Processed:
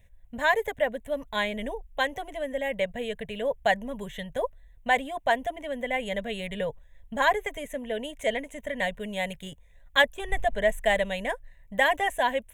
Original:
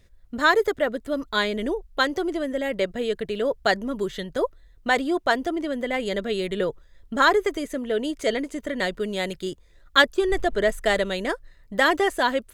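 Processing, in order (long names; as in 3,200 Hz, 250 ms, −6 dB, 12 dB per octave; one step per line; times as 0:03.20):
phaser with its sweep stopped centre 1,300 Hz, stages 6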